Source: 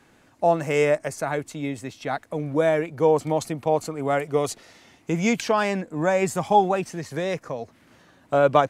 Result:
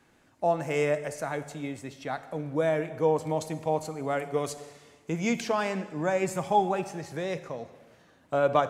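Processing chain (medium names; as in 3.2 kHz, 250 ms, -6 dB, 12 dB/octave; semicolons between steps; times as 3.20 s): plate-style reverb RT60 1.4 s, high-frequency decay 0.95×, DRR 11 dB; trim -6 dB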